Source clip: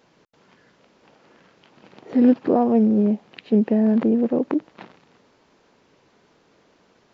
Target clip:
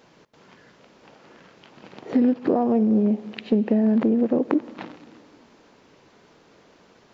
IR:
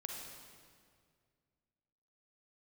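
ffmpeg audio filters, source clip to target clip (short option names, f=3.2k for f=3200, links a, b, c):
-filter_complex "[0:a]acompressor=threshold=-20dB:ratio=12,asplit=2[a][b];[1:a]atrim=start_sample=2205[c];[b][c]afir=irnorm=-1:irlink=0,volume=-12.5dB[d];[a][d]amix=inputs=2:normalize=0,volume=3dB"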